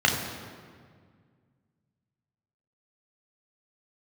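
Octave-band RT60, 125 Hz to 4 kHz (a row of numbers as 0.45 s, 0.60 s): 2.8 s, 2.5 s, 2.0 s, 1.8 s, 1.6 s, 1.2 s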